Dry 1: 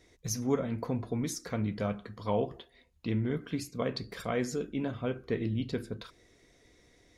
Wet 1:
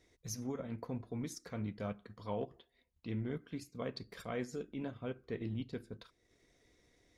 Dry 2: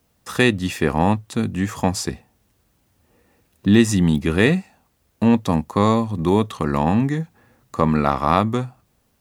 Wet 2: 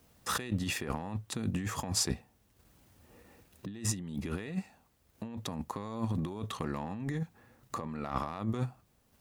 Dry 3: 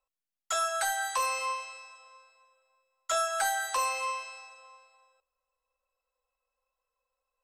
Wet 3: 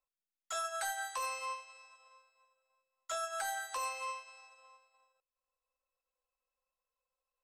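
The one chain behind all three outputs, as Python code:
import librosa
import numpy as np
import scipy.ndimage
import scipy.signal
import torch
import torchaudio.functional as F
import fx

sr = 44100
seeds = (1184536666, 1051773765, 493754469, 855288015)

y = fx.transient(x, sr, attack_db=-3, sustain_db=-7)
y = fx.over_compress(y, sr, threshold_db=-29.0, ratio=-1.0)
y = y * 10.0 ** (-7.0 / 20.0)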